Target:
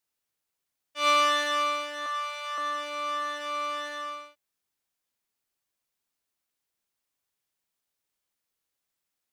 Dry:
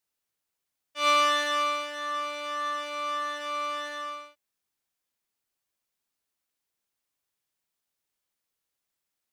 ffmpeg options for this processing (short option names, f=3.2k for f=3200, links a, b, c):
-filter_complex "[0:a]asettb=1/sr,asplit=3[a][b][c];[a]atrim=end=2.064[d];[b]atrim=start=2.06:end=2.58,asetpts=PTS-STARTPTS,afade=t=in:d=0.004:c=qsin,afade=t=out:st=0.516:d=0.004:c=qsin,highpass=f=670:w=0.5412,highpass=f=670:w=1.3066[e];[c]atrim=start=2.576[f];[d][e]acrossfade=d=0.004:c1=hsin:c2=qsin[g];[g][f]acrossfade=d=0.004:c1=qsin:c2=hsin"